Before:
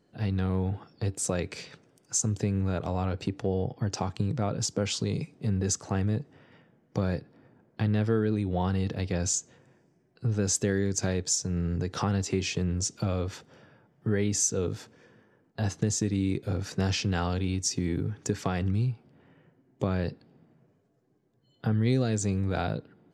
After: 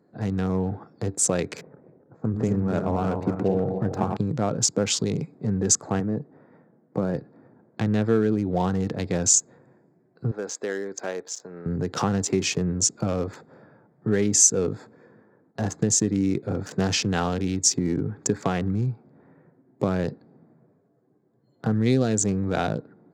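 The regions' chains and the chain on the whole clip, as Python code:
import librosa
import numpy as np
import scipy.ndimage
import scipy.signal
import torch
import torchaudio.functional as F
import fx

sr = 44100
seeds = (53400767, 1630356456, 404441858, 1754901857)

y = fx.chain(x, sr, fx.reverse_delay_fb(ms=145, feedback_pct=54, wet_db=-5),
    fx.lowpass(hz=2600.0, slope=12),
    fx.env_lowpass(base_hz=500.0, full_db=-28.0), at=(1.61, 4.17))
y = fx.chain(y, sr, fx.highpass(hz=130.0, slope=12),
    fx.high_shelf(hz=2100.0, db=-10.0), at=(6.0, 7.15))
y = fx.chain(y, sr, fx.highpass(hz=510.0, slope=12),
    fx.air_absorb(metres=180.0), at=(10.31, 11.66))
y = fx.wiener(y, sr, points=15)
y = scipy.signal.sosfilt(scipy.signal.butter(2, 140.0, 'highpass', fs=sr, output='sos'), y)
y = fx.peak_eq(y, sr, hz=7100.0, db=5.5, octaves=0.62)
y = y * 10.0 ** (6.0 / 20.0)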